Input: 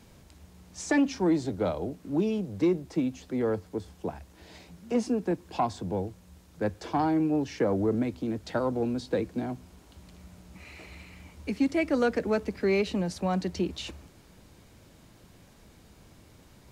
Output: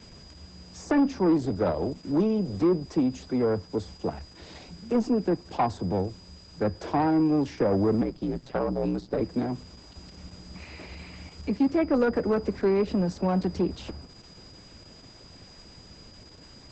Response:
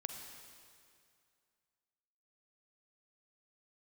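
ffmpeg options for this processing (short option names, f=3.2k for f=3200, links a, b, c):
-filter_complex "[0:a]acrossover=split=1500[a][b];[b]acompressor=threshold=-53dB:ratio=6[c];[a][c]amix=inputs=2:normalize=0,asoftclip=type=tanh:threshold=-21.5dB,aeval=exprs='val(0)+0.00158*sin(2*PI*4900*n/s)':c=same,asettb=1/sr,asplit=3[d][e][f];[d]atrim=end=8.014[g];[e]atrim=start=8.01:end=9.21,asetpts=PTS-STARTPTS,afade=t=in:d=0.004:c=qsin,afade=t=out:st=1.196:d=0.004:c=qsin,aeval=exprs='val(0)*sin(2*PI*60*n/s)':c=same[h];[f]atrim=start=9.206[i];[g][h]acrossfade=d=0.004:c1=hsin:c2=qsin[j];[j][i]acrossfade=d=0.004:c1=qsin:c2=hsin,volume=5.5dB" -ar 48000 -c:a libopus -b:a 10k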